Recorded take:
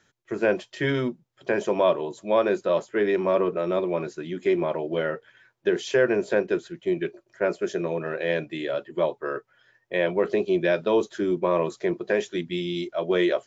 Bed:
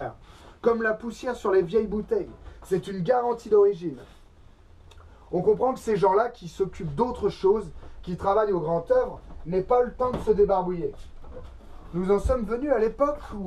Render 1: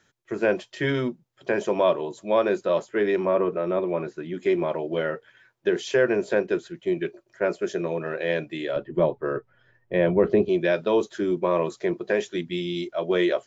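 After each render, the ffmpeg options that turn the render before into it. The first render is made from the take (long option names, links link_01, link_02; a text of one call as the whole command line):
ffmpeg -i in.wav -filter_complex "[0:a]asettb=1/sr,asplit=3[link_01][link_02][link_03];[link_01]atrim=end=3.254[link_04];[link_02]atrim=start=3.25:end=4.34,asetpts=PTS-STARTPTS,afade=type=in:duration=0.004:curve=qsin,afade=type=out:start_time=1.086:duration=0.004:curve=qsin,acrossover=split=2700[link_05][link_06];[link_06]acompressor=threshold=-59dB:ratio=4:attack=1:release=60[link_07];[link_05][link_07]amix=inputs=2:normalize=0[link_08];[link_03]atrim=start=4.336[link_09];[link_04][link_08]acrossfade=duration=0.004:curve1=hsin:curve2=qsin[link_10];[link_10][link_09]acrossfade=duration=0.004:curve1=qsin:curve2=hsin,asettb=1/sr,asplit=3[link_11][link_12][link_13];[link_11]atrim=end=8.764[link_14];[link_12]atrim=start=8.76:end=10.49,asetpts=PTS-STARTPTS,afade=type=in:duration=0.004:curve=qsin,afade=type=out:start_time=1.726:duration=0.004:curve=qsin,aemphasis=mode=reproduction:type=riaa[link_15];[link_13]atrim=start=10.486[link_16];[link_14][link_15]acrossfade=duration=0.004:curve1=hsin:curve2=qsin[link_17];[link_17][link_16]acrossfade=duration=0.004:curve1=qsin:curve2=hsin" out.wav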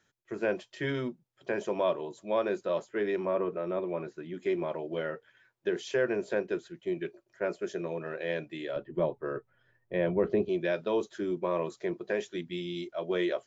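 ffmpeg -i in.wav -af "volume=-7.5dB" out.wav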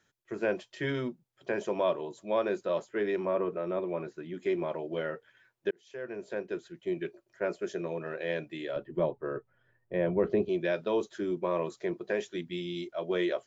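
ffmpeg -i in.wav -filter_complex "[0:a]asettb=1/sr,asplit=3[link_01][link_02][link_03];[link_01]atrim=end=9.114[link_04];[link_02]atrim=start=9.11:end=10.12,asetpts=PTS-STARTPTS,afade=type=in:duration=0.004:curve=qsin,afade=type=out:start_time=1.006:duration=0.004:curve=qsin,lowpass=frequency=2200:poles=1[link_05];[link_03]atrim=start=10.116[link_06];[link_04][link_05]acrossfade=duration=0.004:curve1=hsin:curve2=qsin[link_07];[link_07][link_06]acrossfade=duration=0.004:curve1=qsin:curve2=hsin,asplit=2[link_08][link_09];[link_08]atrim=end=5.71,asetpts=PTS-STARTPTS,afade=type=out:start_time=5.706:duration=0.004:curve=hsin[link_10];[link_09]atrim=start=5.71,asetpts=PTS-STARTPTS,afade=type=in:duration=1.2[link_11];[link_10][link_11]concat=n=2:v=0:a=1" out.wav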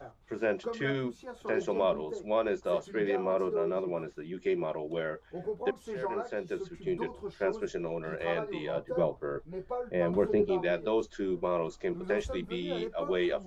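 ffmpeg -i in.wav -i bed.wav -filter_complex "[1:a]volume=-14.5dB[link_01];[0:a][link_01]amix=inputs=2:normalize=0" out.wav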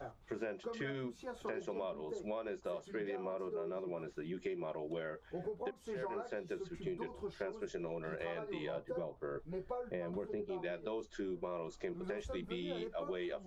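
ffmpeg -i in.wav -af "alimiter=limit=-20.5dB:level=0:latency=1:release=487,acompressor=threshold=-38dB:ratio=6" out.wav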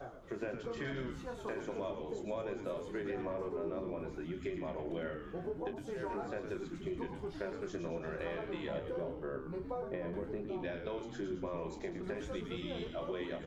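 ffmpeg -i in.wav -filter_complex "[0:a]asplit=2[link_01][link_02];[link_02]adelay=30,volume=-8.5dB[link_03];[link_01][link_03]amix=inputs=2:normalize=0,asplit=2[link_04][link_05];[link_05]asplit=7[link_06][link_07][link_08][link_09][link_10][link_11][link_12];[link_06]adelay=111,afreqshift=-100,volume=-7dB[link_13];[link_07]adelay=222,afreqshift=-200,volume=-11.7dB[link_14];[link_08]adelay=333,afreqshift=-300,volume=-16.5dB[link_15];[link_09]adelay=444,afreqshift=-400,volume=-21.2dB[link_16];[link_10]adelay=555,afreqshift=-500,volume=-25.9dB[link_17];[link_11]adelay=666,afreqshift=-600,volume=-30.7dB[link_18];[link_12]adelay=777,afreqshift=-700,volume=-35.4dB[link_19];[link_13][link_14][link_15][link_16][link_17][link_18][link_19]amix=inputs=7:normalize=0[link_20];[link_04][link_20]amix=inputs=2:normalize=0" out.wav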